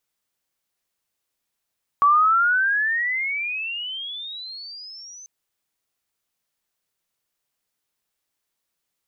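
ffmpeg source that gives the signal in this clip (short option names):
-f lavfi -i "aevalsrc='pow(10,(-12-27*t/3.24)/20)*sin(2*PI*1130*3.24/(29.5*log(2)/12)*(exp(29.5*log(2)/12*t/3.24)-1))':d=3.24:s=44100"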